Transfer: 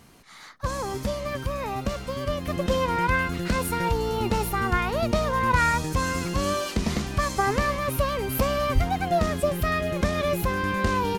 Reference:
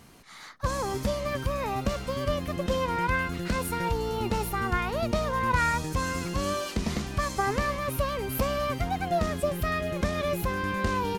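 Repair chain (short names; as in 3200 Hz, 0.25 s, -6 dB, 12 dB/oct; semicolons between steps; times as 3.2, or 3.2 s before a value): 2.45 gain correction -3.5 dB; 8.74–8.86 HPF 140 Hz 24 dB/oct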